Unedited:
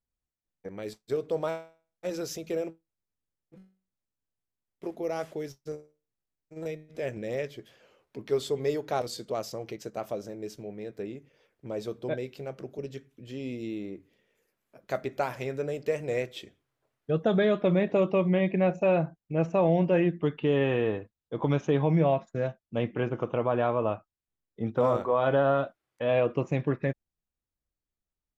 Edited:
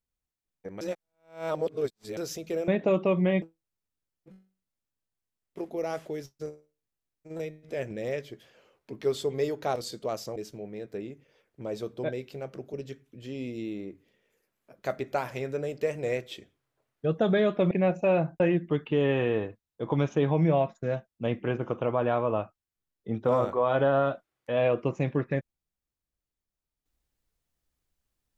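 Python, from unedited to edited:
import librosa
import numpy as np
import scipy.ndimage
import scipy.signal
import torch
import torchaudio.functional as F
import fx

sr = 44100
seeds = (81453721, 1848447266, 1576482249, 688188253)

y = fx.edit(x, sr, fx.reverse_span(start_s=0.81, length_s=1.36),
    fx.cut(start_s=9.62, length_s=0.79),
    fx.move(start_s=17.76, length_s=0.74, to_s=2.68),
    fx.cut(start_s=19.19, length_s=0.73), tone=tone)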